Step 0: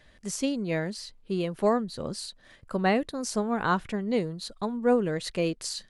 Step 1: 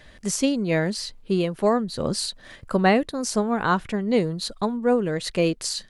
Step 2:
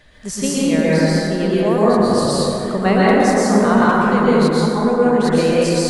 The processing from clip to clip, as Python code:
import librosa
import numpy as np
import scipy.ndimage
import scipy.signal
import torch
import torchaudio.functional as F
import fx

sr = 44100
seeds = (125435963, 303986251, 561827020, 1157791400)

y1 = fx.rider(x, sr, range_db=5, speed_s=0.5)
y1 = y1 * 10.0 ** (5.0 / 20.0)
y2 = fx.rev_plate(y1, sr, seeds[0], rt60_s=3.7, hf_ratio=0.3, predelay_ms=105, drr_db=-9.0)
y2 = y2 * 10.0 ** (-1.5 / 20.0)